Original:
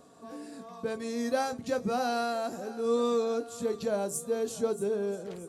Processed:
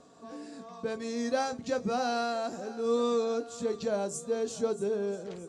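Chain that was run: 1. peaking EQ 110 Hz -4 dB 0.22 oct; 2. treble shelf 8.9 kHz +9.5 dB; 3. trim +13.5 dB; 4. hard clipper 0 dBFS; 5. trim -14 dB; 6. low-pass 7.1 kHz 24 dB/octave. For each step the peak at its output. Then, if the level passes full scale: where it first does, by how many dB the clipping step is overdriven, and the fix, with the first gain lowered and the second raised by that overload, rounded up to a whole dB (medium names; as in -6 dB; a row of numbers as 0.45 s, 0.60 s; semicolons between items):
-16.5 dBFS, -16.5 dBFS, -3.0 dBFS, -3.0 dBFS, -17.0 dBFS, -17.0 dBFS; nothing clips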